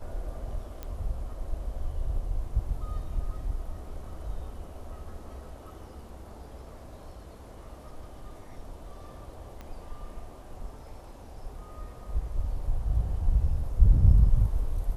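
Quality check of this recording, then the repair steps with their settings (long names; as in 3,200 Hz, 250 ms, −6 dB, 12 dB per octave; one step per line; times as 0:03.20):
0:00.83: click −23 dBFS
0:09.61: click −28 dBFS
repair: click removal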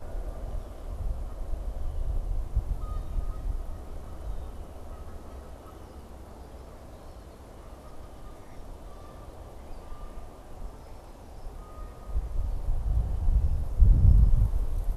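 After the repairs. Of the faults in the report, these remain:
0:09.61: click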